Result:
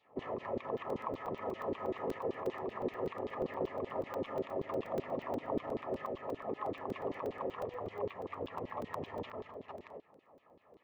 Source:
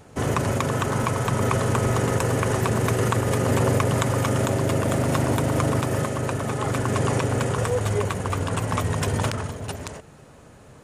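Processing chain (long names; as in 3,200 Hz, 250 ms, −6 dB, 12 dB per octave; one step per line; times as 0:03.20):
parametric band 130 Hz −7.5 dB 0.44 octaves
mains-hum notches 60/120/180/240/300/360/420/480 Hz
brickwall limiter −15.5 dBFS, peak gain reduction 8 dB
auto-filter band-pass saw down 5.2 Hz 300–4,100 Hz
Butterworth band-reject 1,500 Hz, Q 4
head-to-tape spacing loss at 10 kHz 36 dB
regular buffer underruns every 0.12 s, samples 128, zero, from 0:00.78
level −1 dB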